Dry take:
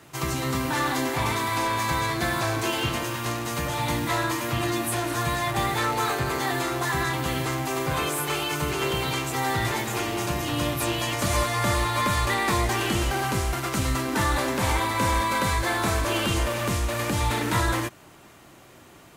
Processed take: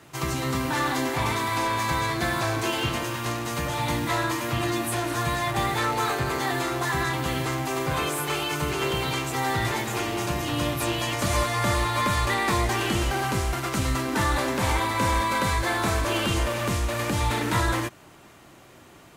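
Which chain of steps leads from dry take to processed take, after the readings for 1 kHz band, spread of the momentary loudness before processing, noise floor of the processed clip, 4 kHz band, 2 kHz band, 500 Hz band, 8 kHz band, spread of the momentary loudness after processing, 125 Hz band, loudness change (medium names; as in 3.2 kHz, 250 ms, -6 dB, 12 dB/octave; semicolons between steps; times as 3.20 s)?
0.0 dB, 4 LU, -50 dBFS, -0.5 dB, 0.0 dB, 0.0 dB, -1.5 dB, 4 LU, 0.0 dB, 0.0 dB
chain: treble shelf 9.3 kHz -3.5 dB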